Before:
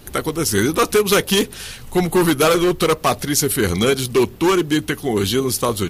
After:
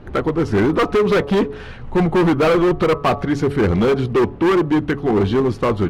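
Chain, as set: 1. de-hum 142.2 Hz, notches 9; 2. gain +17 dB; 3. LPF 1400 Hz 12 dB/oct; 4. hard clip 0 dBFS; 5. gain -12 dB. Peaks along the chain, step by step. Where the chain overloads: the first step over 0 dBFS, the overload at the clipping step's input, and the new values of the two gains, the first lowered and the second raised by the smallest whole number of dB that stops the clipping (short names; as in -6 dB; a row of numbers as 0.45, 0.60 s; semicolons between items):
-5.0, +12.0, +10.0, 0.0, -12.0 dBFS; step 2, 10.0 dB; step 2 +7 dB, step 5 -2 dB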